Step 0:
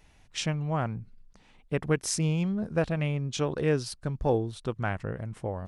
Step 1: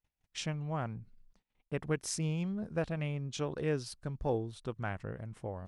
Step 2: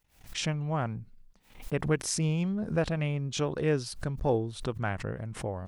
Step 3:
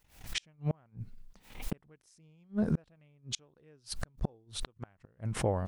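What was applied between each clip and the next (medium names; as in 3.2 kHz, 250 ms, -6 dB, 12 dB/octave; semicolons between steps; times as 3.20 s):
gate -54 dBFS, range -28 dB; trim -7 dB
swell ahead of each attack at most 130 dB/s; trim +5.5 dB
inverted gate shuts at -23 dBFS, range -37 dB; trim +4.5 dB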